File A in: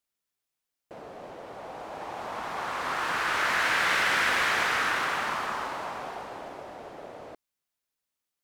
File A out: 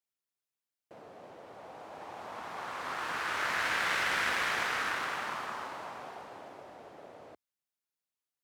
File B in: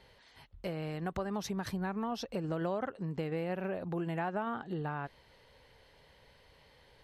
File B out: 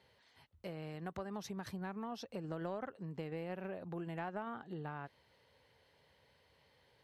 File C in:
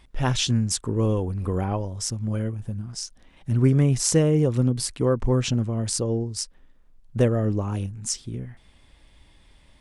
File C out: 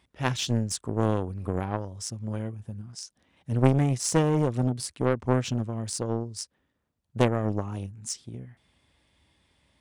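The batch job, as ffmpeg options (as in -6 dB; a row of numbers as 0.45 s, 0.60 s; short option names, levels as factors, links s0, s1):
-af "asoftclip=type=tanh:threshold=0.188,highpass=f=68:w=0.5412,highpass=f=68:w=1.3066,aeval=exprs='0.299*(cos(1*acos(clip(val(0)/0.299,-1,1)))-cos(1*PI/2))+0.075*(cos(3*acos(clip(val(0)/0.299,-1,1)))-cos(3*PI/2))':c=same,volume=1.68"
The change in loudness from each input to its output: -6.0 LU, -7.0 LU, -4.0 LU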